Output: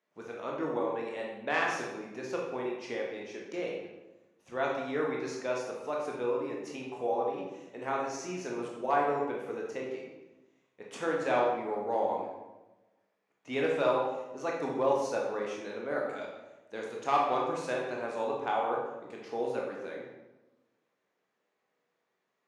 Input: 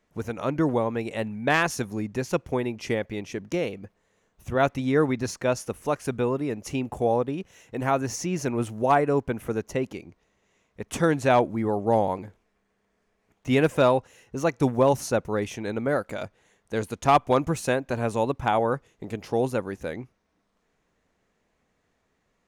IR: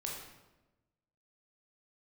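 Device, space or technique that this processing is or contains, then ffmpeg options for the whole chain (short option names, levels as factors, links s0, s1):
supermarket ceiling speaker: -filter_complex "[0:a]highpass=340,lowpass=5900[s0];[1:a]atrim=start_sample=2205[s1];[s0][s1]afir=irnorm=-1:irlink=0,volume=0.473"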